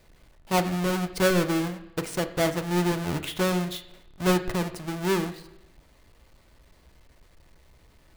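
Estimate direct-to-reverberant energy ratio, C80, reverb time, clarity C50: 7.0 dB, 15.0 dB, 0.85 s, 13.0 dB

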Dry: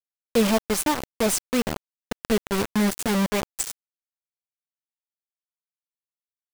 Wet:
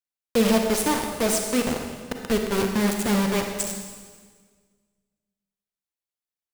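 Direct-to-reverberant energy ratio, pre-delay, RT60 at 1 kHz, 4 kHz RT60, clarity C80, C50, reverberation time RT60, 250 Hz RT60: 3.0 dB, 34 ms, 1.6 s, 1.5 s, 5.5 dB, 4.0 dB, 1.6 s, 1.8 s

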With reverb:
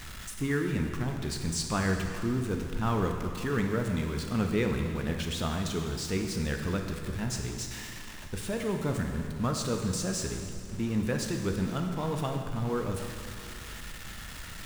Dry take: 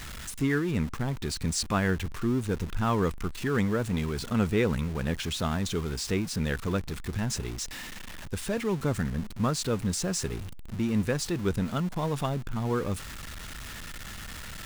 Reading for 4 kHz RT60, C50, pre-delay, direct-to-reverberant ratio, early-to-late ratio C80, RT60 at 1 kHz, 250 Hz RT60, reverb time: 2.2 s, 4.5 dB, 6 ms, 3.0 dB, 5.5 dB, 2.3 s, 2.3 s, 2.3 s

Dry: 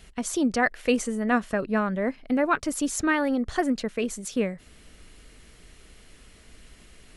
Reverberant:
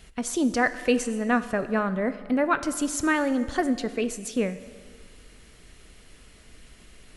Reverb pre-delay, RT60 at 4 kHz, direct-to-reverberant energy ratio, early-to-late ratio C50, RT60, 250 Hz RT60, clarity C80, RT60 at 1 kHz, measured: 4 ms, 1.6 s, 12.0 dB, 13.5 dB, 1.7 s, 1.7 s, 15.0 dB, 1.7 s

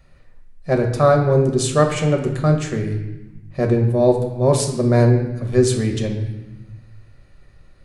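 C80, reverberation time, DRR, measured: 8.5 dB, 1.0 s, 2.0 dB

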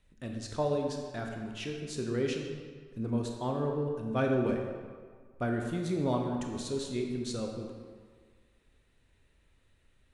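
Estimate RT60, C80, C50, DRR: 1.7 s, 4.5 dB, 3.0 dB, 1.5 dB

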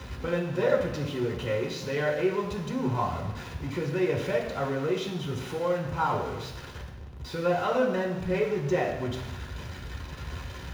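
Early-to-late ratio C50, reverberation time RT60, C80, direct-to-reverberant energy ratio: 5.5 dB, 1.1 s, 8.0 dB, -4.5 dB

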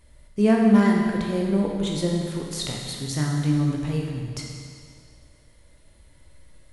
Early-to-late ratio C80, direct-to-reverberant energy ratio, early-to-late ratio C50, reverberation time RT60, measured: 2.5 dB, -1.0 dB, 1.0 dB, 2.1 s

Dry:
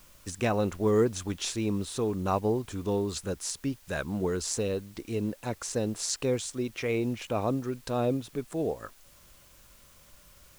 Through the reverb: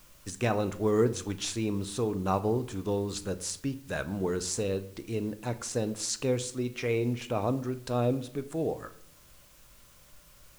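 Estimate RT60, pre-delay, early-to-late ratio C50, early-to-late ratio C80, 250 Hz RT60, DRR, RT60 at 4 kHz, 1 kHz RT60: 0.65 s, 7 ms, 16.5 dB, 19.0 dB, 1.0 s, 10.0 dB, 0.45 s, 0.60 s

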